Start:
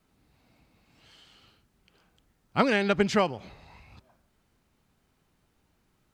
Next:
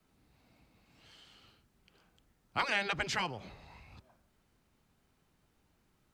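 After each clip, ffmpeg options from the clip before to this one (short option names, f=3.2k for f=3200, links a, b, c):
-filter_complex "[0:a]afftfilt=real='re*lt(hypot(re,im),0.316)':imag='im*lt(hypot(re,im),0.316)':win_size=1024:overlap=0.75,acrossover=split=120|610|1500[a][b][c][d];[b]alimiter=level_in=12dB:limit=-24dB:level=0:latency=1,volume=-12dB[e];[a][e][c][d]amix=inputs=4:normalize=0,volume=-2.5dB"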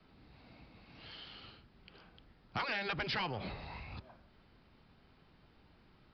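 -af "acompressor=threshold=-38dB:ratio=6,aresample=11025,asoftclip=type=tanh:threshold=-38dB,aresample=44100,volume=8.5dB"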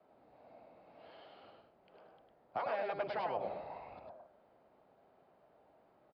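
-af "bandpass=f=630:t=q:w=3.3:csg=0,aecho=1:1:103:0.631,volume=8.5dB"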